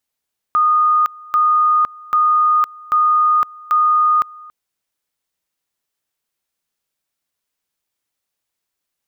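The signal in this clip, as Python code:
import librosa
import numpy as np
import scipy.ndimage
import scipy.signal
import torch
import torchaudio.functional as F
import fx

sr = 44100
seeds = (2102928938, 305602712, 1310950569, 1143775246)

y = fx.two_level_tone(sr, hz=1230.0, level_db=-10.5, drop_db=24.0, high_s=0.51, low_s=0.28, rounds=5)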